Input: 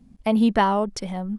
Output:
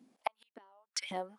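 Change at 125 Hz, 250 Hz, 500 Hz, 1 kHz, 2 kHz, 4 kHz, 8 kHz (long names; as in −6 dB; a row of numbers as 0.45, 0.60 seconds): −25.5, −31.0, −19.5, −17.5, −14.0, −7.5, −3.0 decibels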